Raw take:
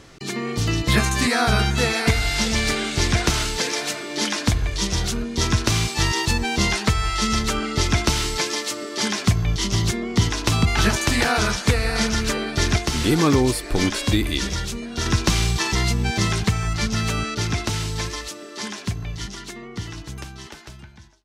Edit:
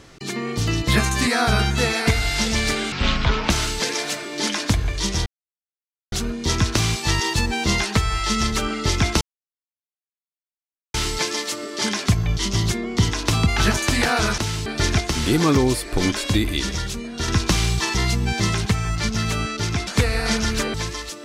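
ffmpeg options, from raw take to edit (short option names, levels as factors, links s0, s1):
-filter_complex "[0:a]asplit=9[s0][s1][s2][s3][s4][s5][s6][s7][s8];[s0]atrim=end=2.924[s9];[s1]atrim=start=2.92:end=3.28,asetpts=PTS-STARTPTS,asetrate=27342,aresample=44100,atrim=end_sample=25606,asetpts=PTS-STARTPTS[s10];[s2]atrim=start=3.276:end=5.04,asetpts=PTS-STARTPTS,afade=t=out:st=1.76:d=0.004:c=hsin,apad=pad_dur=0.86[s11];[s3]atrim=start=5.04:end=8.13,asetpts=PTS-STARTPTS,afade=t=in:d=0.004:c=hsin,afade=t=out:st=3.086:d=0.004:c=hsin,apad=pad_dur=1.73[s12];[s4]atrim=start=8.13:end=11.572,asetpts=PTS-STARTPTS,afade=t=in:d=0.004:c=hsin[s13];[s5]atrim=start=17.648:end=17.932[s14];[s6]atrim=start=12.438:end=17.652[s15];[s7]atrim=start=11.568:end=12.442[s16];[s8]atrim=start=17.928[s17];[s9][s10]acrossfade=d=0.004:c1=hsin:c2=hsin[s18];[s11][s12][s13]concat=n=3:v=0:a=1[s19];[s18][s19]acrossfade=d=0.004:c1=hsin:c2=hsin[s20];[s20][s14]acrossfade=d=0.004:c1=hsin:c2=hsin[s21];[s21][s15]acrossfade=d=0.004:c1=hsin:c2=hsin[s22];[s22][s16]acrossfade=d=0.004:c1=hsin:c2=hsin[s23];[s23][s17]acrossfade=d=0.004:c1=hsin:c2=hsin"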